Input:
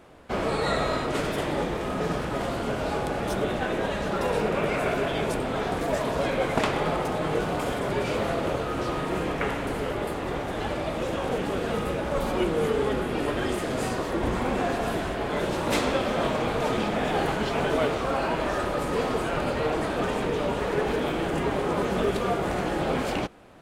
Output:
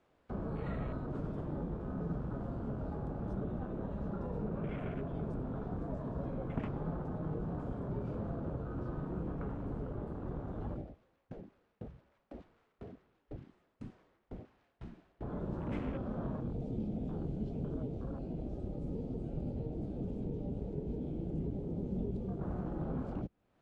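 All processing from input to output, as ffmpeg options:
ffmpeg -i in.wav -filter_complex "[0:a]asettb=1/sr,asplit=3[link_01][link_02][link_03];[link_01]atrim=end=10.814[link_04];[link_02]atrim=start=10.81:end=15.21,asetpts=PTS-STARTPTS,afade=type=in:duration=0.004:curve=qsin,afade=type=out:start_time=4.396:duration=0.004:curve=qsin,highshelf=frequency=4100:gain=-12,aeval=exprs='0.0447*(abs(mod(val(0)/0.0447+3,4)-2)-1)':channel_layout=same,aeval=exprs='val(0)*pow(10,-31*if(lt(mod(2*n/s,1),2*abs(2)/1000),1-mod(2*n/s,1)/(2*abs(2)/1000),(mod(2*n/s,1)-2*abs(2)/1000)/(1-2*abs(2)/1000))/20)':channel_layout=same[link_05];[link_03]atrim=start=15.206[link_06];[link_04][link_05]acrossfade=duration=0.004:curve1=hsin:curve2=qsin[link_07];[link_07][link_06]acrossfade=duration=0.004:curve1=qsin:curve2=hsin,asettb=1/sr,asplit=3[link_08][link_09][link_10];[link_08]atrim=end=16.404[link_11];[link_09]atrim=start=16.4:end=22.41,asetpts=PTS-STARTPTS,afade=type=in:duration=0.004:curve=qsin,afade=type=out:start_time=6.006:duration=0.004:curve=qsin,acrossover=split=480|3000[link_12][link_13][link_14];[link_13]acompressor=threshold=-36dB:ratio=10:attack=3.2:release=140:knee=2.83:detection=peak[link_15];[link_12][link_15][link_14]amix=inputs=3:normalize=0,bandreject=frequency=1800:width=5.2[link_16];[link_10]atrim=start=22.406[link_17];[link_11][link_16]acrossfade=duration=0.004:curve1=hsin:curve2=qsin[link_18];[link_18][link_17]acrossfade=duration=0.004:curve1=qsin:curve2=hsin,afwtdn=0.0355,lowpass=7200,acrossover=split=250[link_19][link_20];[link_20]acompressor=threshold=-54dB:ratio=2[link_21];[link_19][link_21]amix=inputs=2:normalize=0,volume=-4dB" out.wav

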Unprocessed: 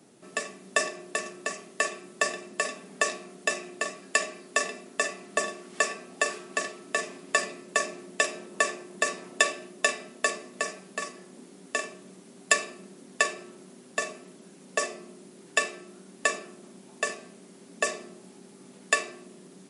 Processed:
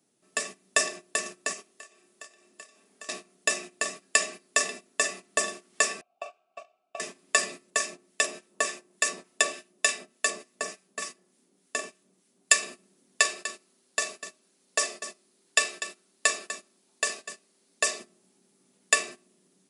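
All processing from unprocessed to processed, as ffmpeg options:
ffmpeg -i in.wav -filter_complex "[0:a]asettb=1/sr,asplit=3[link_01][link_02][link_03];[link_01]atrim=end=1.534[link_04];[link_02]atrim=start=1.53:end=3.09,asetpts=PTS-STARTPTS,afade=type=in:duration=0.004:curve=qsin,afade=type=out:start_time=1.556:duration=0.004:curve=qsin,equalizer=frequency=160:width=3.3:gain=-10.5,acompressor=threshold=-40dB:ratio=6:attack=3.2:release=140:knee=1:detection=peak,asplit=2[link_05][link_06];[link_06]adelay=30,volume=-10dB[link_07];[link_05][link_07]amix=inputs=2:normalize=0,atrim=end_sample=68796[link_08];[link_03]atrim=start=3.086[link_09];[link_04][link_08]acrossfade=duration=0.004:curve1=hsin:curve2=qsin[link_10];[link_10][link_09]acrossfade=duration=0.004:curve1=qsin:curve2=hsin,asettb=1/sr,asplit=3[link_11][link_12][link_13];[link_11]atrim=end=6.014[link_14];[link_12]atrim=start=6.01:end=7,asetpts=PTS-STARTPTS,afade=type=in:duration=0.004:curve=qsin,afade=type=out:start_time=0.986:duration=0.004:curve=qsin,asplit=3[link_15][link_16][link_17];[link_15]bandpass=frequency=730:width_type=q:width=8,volume=0dB[link_18];[link_16]bandpass=frequency=1090:width_type=q:width=8,volume=-6dB[link_19];[link_17]bandpass=frequency=2440:width_type=q:width=8,volume=-9dB[link_20];[link_18][link_19][link_20]amix=inputs=3:normalize=0,highshelf=frequency=6400:gain=-4,aecho=1:1:1.4:0.44,atrim=end_sample=43659[link_21];[link_13]atrim=start=6.996[link_22];[link_14][link_21]acrossfade=duration=0.004:curve1=hsin:curve2=qsin[link_23];[link_23][link_22]acrossfade=duration=0.004:curve1=qsin:curve2=hsin,asettb=1/sr,asplit=3[link_24][link_25][link_26];[link_24]atrim=end=7.704[link_27];[link_25]atrim=start=7.7:end=12.63,asetpts=PTS-STARTPTS,afade=type=in:duration=0.004:curve=qsin,afade=type=out:start_time=4.926:duration=0.004:curve=qsin,highpass=100,acrossover=split=1200[link_28][link_29];[link_28]aeval=exprs='val(0)*(1-0.5/2+0.5/2*cos(2*PI*3.4*n/s))':channel_layout=same[link_30];[link_29]aeval=exprs='val(0)*(1-0.5/2-0.5/2*cos(2*PI*3.4*n/s))':channel_layout=same[link_31];[link_30][link_31]amix=inputs=2:normalize=0[link_32];[link_26]atrim=start=12.626[link_33];[link_27][link_32]acrossfade=duration=0.004:curve1=hsin:curve2=qsin[link_34];[link_34][link_33]acrossfade=duration=0.004:curve1=qsin:curve2=hsin,asettb=1/sr,asplit=3[link_35][link_36][link_37];[link_35]atrim=end=13.204[link_38];[link_36]atrim=start=13.2:end=18,asetpts=PTS-STARTPTS,afade=type=in:duration=0.004:curve=qsin,afade=type=out:start_time=4.796:duration=0.004:curve=qsin,highpass=frequency=390:poles=1,equalizer=frequency=4300:width_type=o:width=0.41:gain=4,aecho=1:1:246:0.251,atrim=end_sample=211680[link_39];[link_37]atrim=start=17.996[link_40];[link_38][link_39]acrossfade=duration=0.004:curve1=hsin:curve2=qsin[link_41];[link_41][link_40]acrossfade=duration=0.004:curve1=qsin:curve2=hsin,highshelf=frequency=3000:gain=9,agate=range=-16dB:threshold=-37dB:ratio=16:detection=peak,volume=-2dB" out.wav

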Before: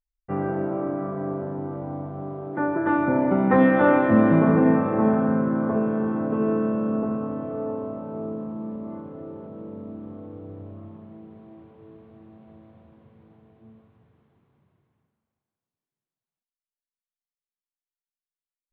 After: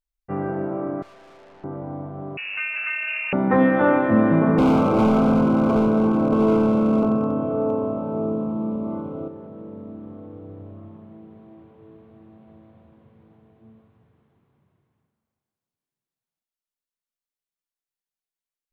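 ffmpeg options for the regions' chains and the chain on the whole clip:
ffmpeg -i in.wav -filter_complex "[0:a]asettb=1/sr,asplit=3[link_01][link_02][link_03];[link_01]atrim=end=1.024[link_04];[link_02]atrim=start=1.02:end=1.64,asetpts=PTS-STARTPTS,afade=type=in:duration=0.004:curve=qsin,afade=type=out:start_time=0.616:duration=0.004:curve=qsin,highpass=570,aeval=exprs='(tanh(224*val(0)+0.35)-tanh(0.35))/224':channel_layout=same[link_05];[link_03]atrim=start=1.636[link_06];[link_04][link_05]acrossfade=duration=0.004:curve1=hsin:curve2=qsin[link_07];[link_07][link_06]acrossfade=duration=0.004:curve1=qsin:curve2=hsin,asettb=1/sr,asplit=3[link_08][link_09][link_10];[link_08]atrim=end=2.374[link_11];[link_09]atrim=start=2.37:end=3.33,asetpts=PTS-STARTPTS,afade=type=in:duration=0.004:curve=qsin,afade=type=out:start_time=0.956:duration=0.004:curve=qsin,aeval=exprs='val(0)+0.5*0.0211*sgn(val(0))':channel_layout=same,acrossover=split=210|1200[link_12][link_13][link_14];[link_12]acompressor=threshold=-43dB:ratio=4[link_15];[link_13]acompressor=threshold=-28dB:ratio=4[link_16];[link_14]acompressor=threshold=-34dB:ratio=4[link_17];[link_15][link_16][link_17]amix=inputs=3:normalize=0,lowpass=frequency=2600:width_type=q:width=0.5098,lowpass=frequency=2600:width_type=q:width=0.6013,lowpass=frequency=2600:width_type=q:width=0.9,lowpass=frequency=2600:width_type=q:width=2.563,afreqshift=-3000[link_18];[link_10]atrim=start=3.326[link_19];[link_11][link_18]acrossfade=duration=0.004:curve1=hsin:curve2=qsin[link_20];[link_20][link_19]acrossfade=duration=0.004:curve1=qsin:curve2=hsin,asettb=1/sr,asplit=3[link_21][link_22][link_23];[link_21]atrim=end=4.584[link_24];[link_22]atrim=start=4.58:end=9.28,asetpts=PTS-STARTPTS,afade=type=in:duration=0.004:curve=qsin,afade=type=out:start_time=4.696:duration=0.004:curve=qsin,asoftclip=type=hard:threshold=-21dB,asuperstop=centerf=1800:order=4:qfactor=2.7,acontrast=78[link_25];[link_23]atrim=start=9.276[link_26];[link_24][link_25]acrossfade=duration=0.004:curve1=hsin:curve2=qsin[link_27];[link_27][link_26]acrossfade=duration=0.004:curve1=qsin:curve2=hsin" out.wav

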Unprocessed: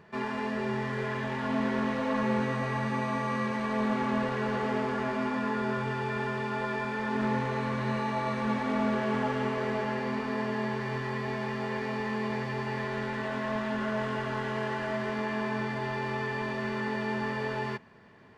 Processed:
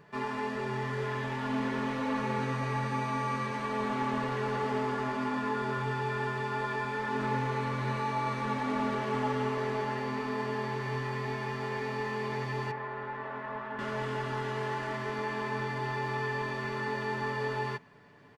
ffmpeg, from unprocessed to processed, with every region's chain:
ffmpeg -i in.wav -filter_complex "[0:a]asettb=1/sr,asplit=3[link_01][link_02][link_03];[link_01]atrim=end=12.714[link_04];[link_02]atrim=start=12.71:end=13.79,asetpts=PTS-STARTPTS,afade=type=in:duration=0.004:curve=qsin,afade=type=out:start_time=1.076:duration=0.004:curve=qsin,lowpass=1000,tiltshelf=frequency=710:gain=-9.5[link_05];[link_03]atrim=start=13.786[link_06];[link_04][link_05]acrossfade=duration=0.004:curve1=hsin:curve2=qsin[link_07];[link_07][link_06]acrossfade=duration=0.004:curve1=qsin:curve2=hsin,highshelf=frequency=7500:gain=5,aecho=1:1:6.9:0.52,volume=-2.5dB" out.wav

